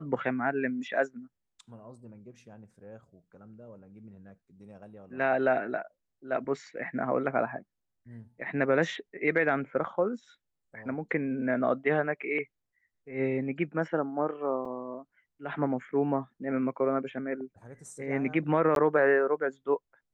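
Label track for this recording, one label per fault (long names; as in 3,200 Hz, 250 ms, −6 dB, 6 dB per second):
14.650000	14.650000	drop-out 4.3 ms
18.750000	18.760000	drop-out 12 ms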